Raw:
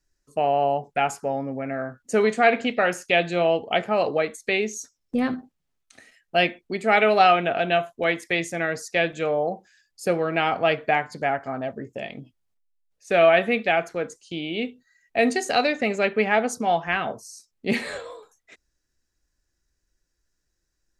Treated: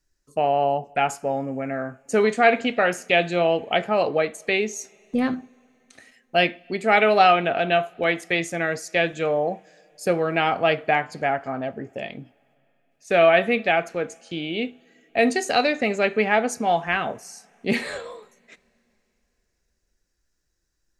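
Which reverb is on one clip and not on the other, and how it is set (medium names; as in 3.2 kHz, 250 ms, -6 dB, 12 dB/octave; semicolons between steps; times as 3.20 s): two-slope reverb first 0.3 s, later 3.5 s, from -18 dB, DRR 20 dB; trim +1 dB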